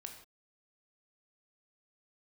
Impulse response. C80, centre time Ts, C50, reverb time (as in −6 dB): 9.5 dB, 21 ms, 7.0 dB, non-exponential decay